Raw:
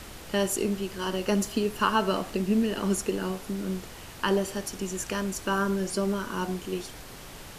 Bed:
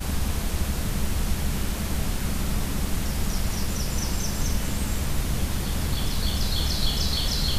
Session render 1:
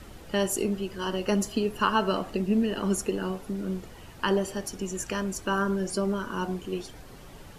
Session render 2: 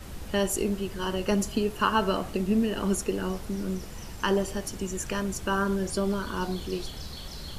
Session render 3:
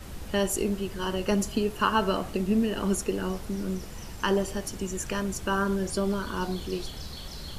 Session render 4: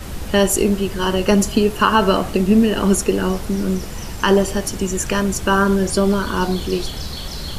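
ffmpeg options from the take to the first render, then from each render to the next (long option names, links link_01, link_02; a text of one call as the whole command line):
ffmpeg -i in.wav -af "afftdn=noise_reduction=9:noise_floor=-44" out.wav
ffmpeg -i in.wav -i bed.wav -filter_complex "[1:a]volume=-15.5dB[link_01];[0:a][link_01]amix=inputs=2:normalize=0" out.wav
ffmpeg -i in.wav -af anull out.wav
ffmpeg -i in.wav -af "volume=11dB,alimiter=limit=-3dB:level=0:latency=1" out.wav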